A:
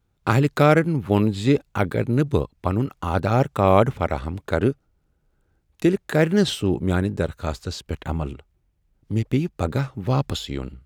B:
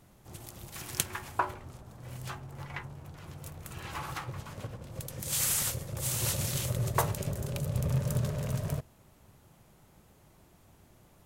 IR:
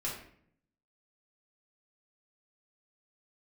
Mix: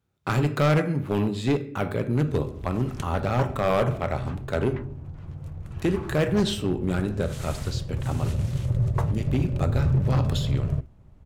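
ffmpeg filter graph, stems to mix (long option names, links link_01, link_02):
-filter_complex "[0:a]highpass=frequency=63:width=0.5412,highpass=frequency=63:width=1.3066,volume=-5.5dB,asplit=2[link_01][link_02];[link_02]volume=-8.5dB[link_03];[1:a]aemphasis=mode=reproduction:type=riaa,adelay=2000,volume=-3.5dB[link_04];[2:a]atrim=start_sample=2205[link_05];[link_03][link_05]afir=irnorm=-1:irlink=0[link_06];[link_01][link_04][link_06]amix=inputs=3:normalize=0,asoftclip=type=hard:threshold=-16dB"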